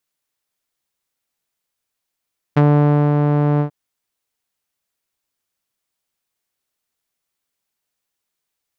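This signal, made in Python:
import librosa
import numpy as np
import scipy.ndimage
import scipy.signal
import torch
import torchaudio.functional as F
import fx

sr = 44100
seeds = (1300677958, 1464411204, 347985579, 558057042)

y = fx.sub_voice(sr, note=50, wave='saw', cutoff_hz=950.0, q=0.73, env_oct=1.5, env_s=0.06, attack_ms=14.0, decay_s=0.55, sustain_db=-4, release_s=0.1, note_s=1.04, slope=12)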